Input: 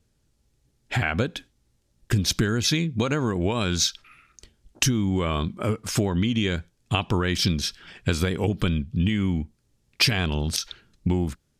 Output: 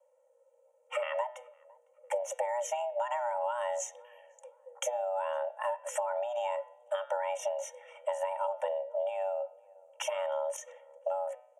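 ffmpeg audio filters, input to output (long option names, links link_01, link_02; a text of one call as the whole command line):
ffmpeg -i in.wav -filter_complex "[0:a]lowpass=frequency=9500:width=0.5412,lowpass=frequency=9500:width=1.3066,equalizer=frequency=3500:width=0.3:gain=-10.5,aecho=1:1:2.2:0.89,bandreject=frequency=131.3:width_type=h:width=4,bandreject=frequency=262.6:width_type=h:width=4,bandreject=frequency=393.9:width_type=h:width=4,bandreject=frequency=525.2:width_type=h:width=4,bandreject=frequency=656.5:width_type=h:width=4,bandreject=frequency=787.8:width_type=h:width=4,bandreject=frequency=919.1:width_type=h:width=4,bandreject=frequency=1050.4:width_type=h:width=4,bandreject=frequency=1181.7:width_type=h:width=4,bandreject=frequency=1313:width_type=h:width=4,bandreject=frequency=1444.3:width_type=h:width=4,bandreject=frequency=1575.6:width_type=h:width=4,bandreject=frequency=1706.9:width_type=h:width=4,bandreject=frequency=1838.2:width_type=h:width=4,bandreject=frequency=1969.5:width_type=h:width=4,bandreject=frequency=2100.8:width_type=h:width=4,bandreject=frequency=2232.1:width_type=h:width=4,bandreject=frequency=2363.4:width_type=h:width=4,bandreject=frequency=2494.7:width_type=h:width=4,bandreject=frequency=2626:width_type=h:width=4,bandreject=frequency=2757.3:width_type=h:width=4,bandreject=frequency=2888.6:width_type=h:width=4,bandreject=frequency=3019.9:width_type=h:width=4,bandreject=frequency=3151.2:width_type=h:width=4,bandreject=frequency=3282.5:width_type=h:width=4,bandreject=frequency=3413.8:width_type=h:width=4,bandreject=frequency=3545.1:width_type=h:width=4,bandreject=frequency=3676.4:width_type=h:width=4,bandreject=frequency=3807.7:width_type=h:width=4,acompressor=threshold=-26dB:ratio=6,afreqshift=480,asuperstop=centerf=4400:order=8:qfactor=1.6,asplit=2[link_01][link_02];[link_02]adelay=507,lowpass=frequency=1200:poles=1,volume=-24dB,asplit=2[link_03][link_04];[link_04]adelay=507,lowpass=frequency=1200:poles=1,volume=0.5,asplit=2[link_05][link_06];[link_06]adelay=507,lowpass=frequency=1200:poles=1,volume=0.5[link_07];[link_01][link_03][link_05][link_07]amix=inputs=4:normalize=0,volume=-3.5dB" out.wav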